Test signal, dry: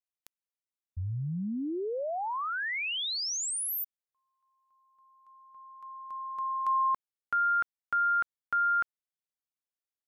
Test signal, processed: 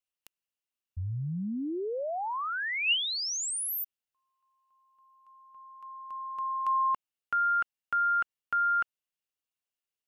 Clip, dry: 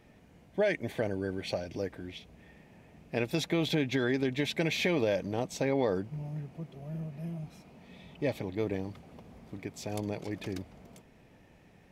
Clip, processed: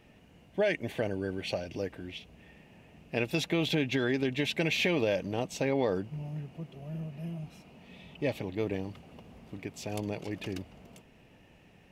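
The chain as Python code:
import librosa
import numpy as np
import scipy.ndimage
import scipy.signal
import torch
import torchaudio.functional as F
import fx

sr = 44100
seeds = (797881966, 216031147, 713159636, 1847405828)

y = fx.peak_eq(x, sr, hz=2800.0, db=10.0, octaves=0.22)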